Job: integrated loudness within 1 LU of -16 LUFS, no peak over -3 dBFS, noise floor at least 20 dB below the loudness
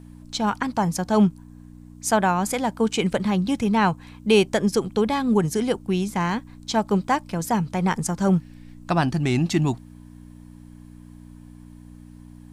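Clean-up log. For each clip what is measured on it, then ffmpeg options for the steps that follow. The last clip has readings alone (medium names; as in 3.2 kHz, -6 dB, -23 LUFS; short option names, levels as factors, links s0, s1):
hum 60 Hz; highest harmonic 300 Hz; hum level -43 dBFS; loudness -23.0 LUFS; peak level -5.5 dBFS; loudness target -16.0 LUFS
-> -af "bandreject=f=60:t=h:w=4,bandreject=f=120:t=h:w=4,bandreject=f=180:t=h:w=4,bandreject=f=240:t=h:w=4,bandreject=f=300:t=h:w=4"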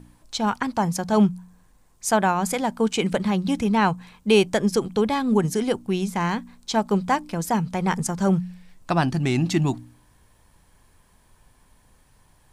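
hum not found; loudness -23.0 LUFS; peak level -5.5 dBFS; loudness target -16.0 LUFS
-> -af "volume=2.24,alimiter=limit=0.708:level=0:latency=1"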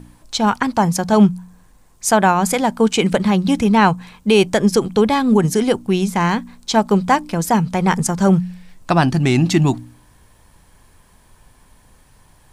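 loudness -16.5 LUFS; peak level -3.0 dBFS; noise floor -52 dBFS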